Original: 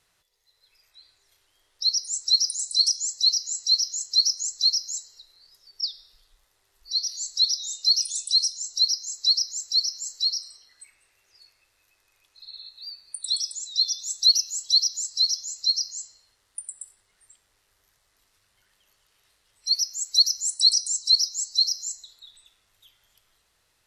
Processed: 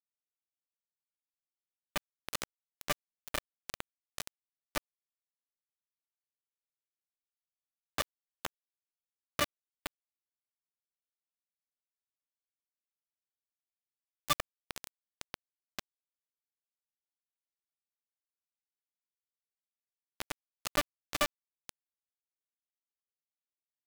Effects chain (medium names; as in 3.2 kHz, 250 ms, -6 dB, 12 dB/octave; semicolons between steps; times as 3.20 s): bit-reversed sample order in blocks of 128 samples; pitch-class resonator D, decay 0.35 s; on a send: two-band feedback delay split 1.1 kHz, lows 310 ms, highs 742 ms, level -6.5 dB; on the sum: companded quantiser 2-bit; trim +6 dB